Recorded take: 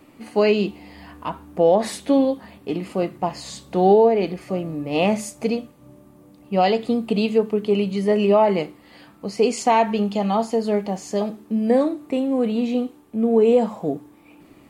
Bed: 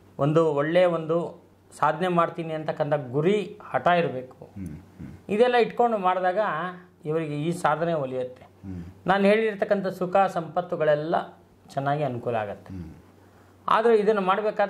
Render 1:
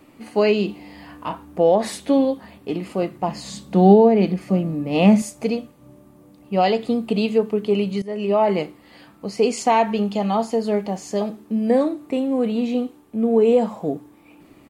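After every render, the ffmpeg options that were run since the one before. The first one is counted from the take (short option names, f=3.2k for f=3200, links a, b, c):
-filter_complex "[0:a]asplit=3[a][b][c];[a]afade=t=out:st=0.68:d=0.02[d];[b]asplit=2[e][f];[f]adelay=34,volume=-7dB[g];[e][g]amix=inputs=2:normalize=0,afade=t=in:st=0.68:d=0.02,afade=t=out:st=1.44:d=0.02[h];[c]afade=t=in:st=1.44:d=0.02[i];[d][h][i]amix=inputs=3:normalize=0,asettb=1/sr,asplit=3[j][k][l];[j]atrim=end=3.284[m];[k]atrim=start=3.28:end=5.22,asetpts=PTS-STARTPTS,afade=t=in:d=0.004:c=qsin,afade=t=out:st=1.936:d=0.004:c=qsin,equalizer=f=200:w=2.3:g=10.5[n];[l]atrim=start=5.216[o];[m][n]acrossfade=d=0.004:c1=hsin:c2=qsin[p];[p][o]acrossfade=d=0.004:c1=qsin:c2=hsin,asplit=2[q][r];[q]atrim=end=8.02,asetpts=PTS-STARTPTS,afade=t=out:st=8.016:d=0.004:c=hsin:silence=0.141254[s];[r]atrim=start=8.02,asetpts=PTS-STARTPTS,afade=t=in:d=0.48:silence=0.141254[t];[s][t]concat=n=2:v=0:a=1"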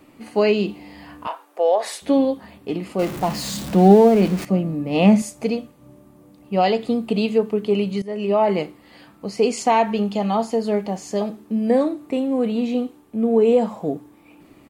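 -filter_complex "[0:a]asettb=1/sr,asplit=3[a][b][c];[a]atrim=end=1.274[d];[b]atrim=start=1.27:end=2.02,asetpts=PTS-STARTPTS,afade=t=in:d=0.004:c=qsin,afade=t=out:st=0.746:d=0.004:c=qsin,highpass=f=480:w=0.5412,highpass=f=480:w=1.3066[e];[c]atrim=start=2.016[f];[d][e]acrossfade=d=0.004:c1=hsin:c2=qsin[g];[g][f]acrossfade=d=0.004:c1=qsin:c2=hsin,asettb=1/sr,asplit=3[h][i][j];[h]atrim=end=2.994[k];[i]atrim=start=2.99:end=4.45,asetpts=PTS-STARTPTS,afade=t=in:d=0.004:c=qsin,afade=t=out:st=1.456:d=0.004:c=qsin,aeval=exprs='val(0)+0.5*0.0473*sgn(val(0))':c=same[l];[j]atrim=start=4.446[m];[k][l]acrossfade=d=0.004:c1=hsin:c2=qsin[n];[n][m]acrossfade=d=0.004:c1=qsin:c2=hsin"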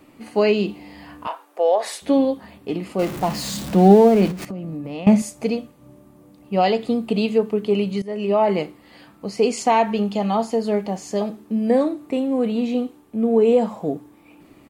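-filter_complex "[0:a]asettb=1/sr,asplit=3[a][b][c];[a]atrim=end=4.314[d];[b]atrim=start=4.31:end=5.07,asetpts=PTS-STARTPTS,afade=t=in:d=0.004:c=qsin,afade=t=out:st=0.756:d=0.004:c=qsin,acompressor=threshold=-26dB:ratio=16:attack=3.2:release=140:knee=1:detection=peak[e];[c]atrim=start=5.066[f];[d][e]acrossfade=d=0.004:c1=hsin:c2=qsin[g];[g][f]acrossfade=d=0.004:c1=qsin:c2=hsin"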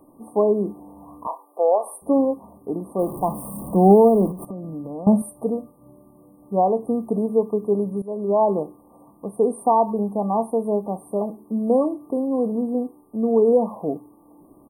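-af "afftfilt=real='re*(1-between(b*sr/4096,1200,8500))':imag='im*(1-between(b*sr/4096,1200,8500))':win_size=4096:overlap=0.75,equalizer=f=90:t=o:w=2.4:g=-5"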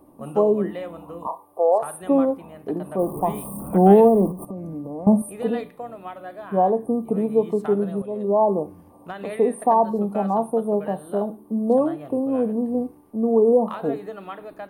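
-filter_complex "[1:a]volume=-13.5dB[a];[0:a][a]amix=inputs=2:normalize=0"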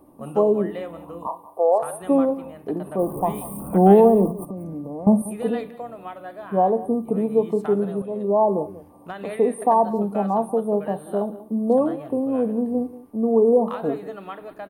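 -af "aecho=1:1:187:0.133"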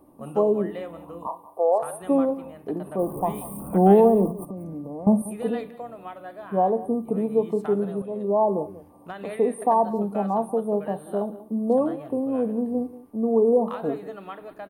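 -af "volume=-2.5dB"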